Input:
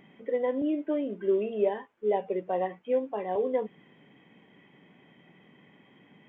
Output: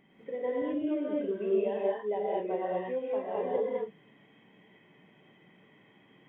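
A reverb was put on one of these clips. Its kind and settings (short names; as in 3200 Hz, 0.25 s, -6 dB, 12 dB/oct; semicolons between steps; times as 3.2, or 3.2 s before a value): non-linear reverb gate 0.25 s rising, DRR -5.5 dB; gain -8 dB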